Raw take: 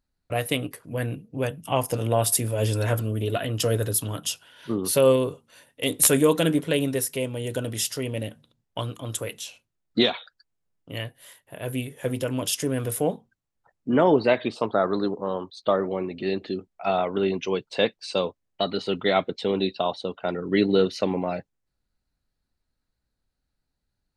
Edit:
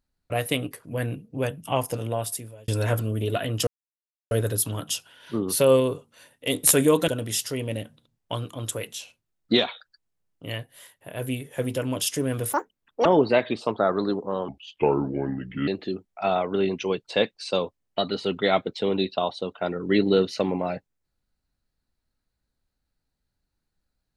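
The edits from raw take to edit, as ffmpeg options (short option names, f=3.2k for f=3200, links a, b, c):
-filter_complex "[0:a]asplit=8[a][b][c][d][e][f][g][h];[a]atrim=end=2.68,asetpts=PTS-STARTPTS,afade=t=out:st=1.66:d=1.02[i];[b]atrim=start=2.68:end=3.67,asetpts=PTS-STARTPTS,afade=t=in:d=0.004:c=hsin,afade=t=out:st=0.986:d=0.004:c=hsin,apad=pad_dur=0.64[j];[c]atrim=start=3.67:end=6.442,asetpts=PTS-STARTPTS,afade=t=in:d=0.004:c=hsin[k];[d]atrim=start=7.538:end=12.994[l];[e]atrim=start=12.99:end=14,asetpts=PTS-STARTPTS,asetrate=85113,aresample=44100,atrim=end_sample=23078,asetpts=PTS-STARTPTS[m];[f]atrim=start=13.996:end=15.434[n];[g]atrim=start=15.43:end=16.3,asetpts=PTS-STARTPTS,asetrate=32193,aresample=44100[o];[h]atrim=start=16.296[p];[i][j][k]concat=n=3:v=0:a=1[q];[q][l]acrossfade=d=0.004:c1=hsin:c2=hsin[r];[r][m]acrossfade=d=0.004:c1=hsin:c2=hsin[s];[s][n]acrossfade=d=0.004:c1=hsin:c2=hsin[t];[t][o]acrossfade=d=0.004:c1=hsin:c2=hsin[u];[u][p]acrossfade=d=0.004:c1=hsin:c2=hsin"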